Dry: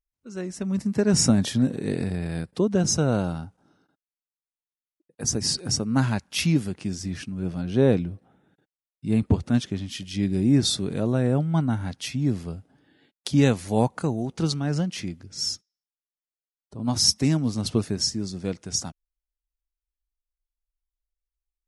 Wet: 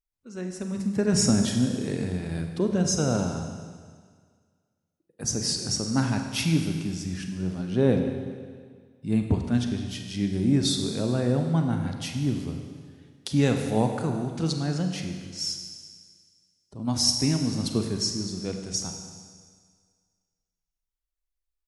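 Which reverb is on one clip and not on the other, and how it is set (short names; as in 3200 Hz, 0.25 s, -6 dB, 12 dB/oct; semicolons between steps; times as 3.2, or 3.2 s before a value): Schroeder reverb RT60 1.8 s, combs from 33 ms, DRR 4.5 dB; gain -3 dB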